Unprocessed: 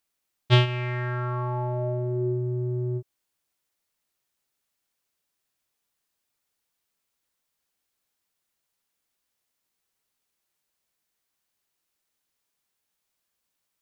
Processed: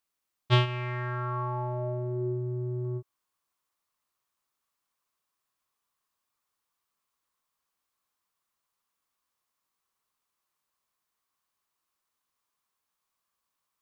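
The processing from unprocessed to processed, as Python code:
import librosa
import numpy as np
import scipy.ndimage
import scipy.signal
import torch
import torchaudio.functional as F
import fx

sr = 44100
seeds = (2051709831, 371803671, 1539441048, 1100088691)

y = fx.peak_eq(x, sr, hz=1100.0, db=fx.steps((0.0, 6.0), (2.85, 13.0)), octaves=0.5)
y = F.gain(torch.from_numpy(y), -4.5).numpy()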